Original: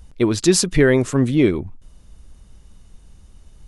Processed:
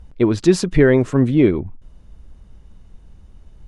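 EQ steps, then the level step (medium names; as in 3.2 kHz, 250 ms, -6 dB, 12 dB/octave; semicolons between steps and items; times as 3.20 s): low-pass 1.7 kHz 6 dB/octave; band-stop 1.2 kHz, Q 29; +2.0 dB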